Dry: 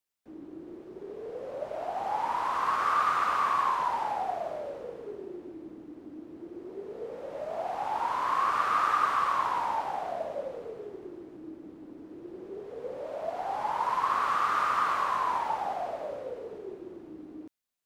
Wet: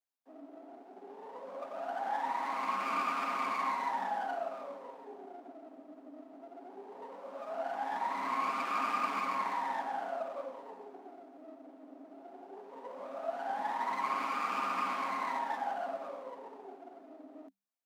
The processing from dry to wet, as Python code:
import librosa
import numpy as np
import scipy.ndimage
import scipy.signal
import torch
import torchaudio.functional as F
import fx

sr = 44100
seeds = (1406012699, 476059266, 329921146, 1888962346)

y = fx.lower_of_two(x, sr, delay_ms=7.4)
y = scipy.signal.sosfilt(scipy.signal.cheby1(6, 9, 190.0, 'highpass', fs=sr, output='sos'), y)